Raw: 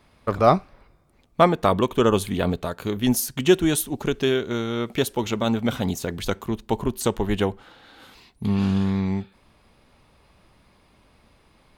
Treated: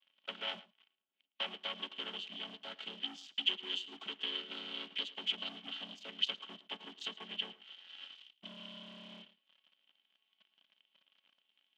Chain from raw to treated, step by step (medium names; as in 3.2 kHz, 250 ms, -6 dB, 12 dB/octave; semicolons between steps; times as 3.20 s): vocoder on a held chord minor triad, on F#3; compression 3:1, threshold -31 dBFS, peak gain reduction 13.5 dB; waveshaping leveller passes 3; band-pass filter 3.1 kHz, Q 14; echo from a far wall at 19 m, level -18 dB; trim +14 dB